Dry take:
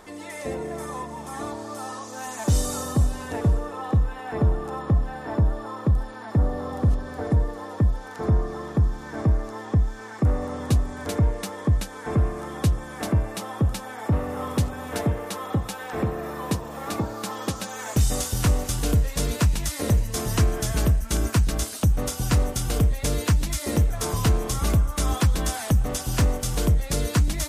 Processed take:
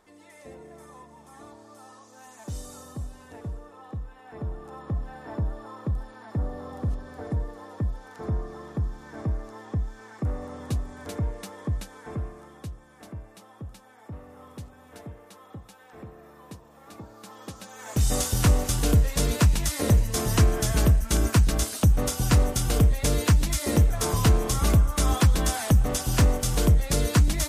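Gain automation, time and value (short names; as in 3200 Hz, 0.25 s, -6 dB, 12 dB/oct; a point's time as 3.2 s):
4.16 s -14.5 dB
5.12 s -7.5 dB
11.91 s -7.5 dB
12.78 s -17.5 dB
16.83 s -17.5 dB
17.77 s -9.5 dB
18.14 s +1 dB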